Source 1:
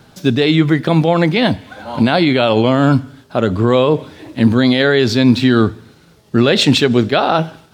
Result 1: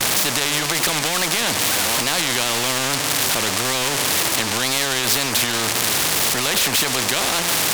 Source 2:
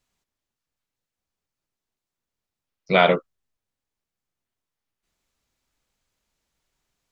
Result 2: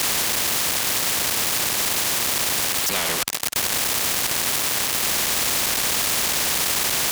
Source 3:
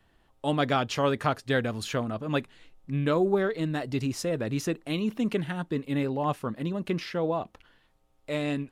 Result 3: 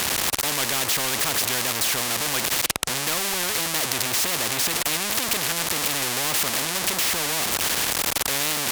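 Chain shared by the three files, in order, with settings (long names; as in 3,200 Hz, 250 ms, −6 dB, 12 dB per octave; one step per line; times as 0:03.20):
converter with a step at zero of −20.5 dBFS
meter weighting curve A
noise gate with hold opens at −24 dBFS
low-shelf EQ 150 Hz +11 dB
notch filter 1,400 Hz, Q 6.7
tape wow and flutter 120 cents
in parallel at −4 dB: soft clipping −13.5 dBFS
on the sum: boost into a limiter +4.5 dB
every bin compressed towards the loudest bin 4 to 1
level −1 dB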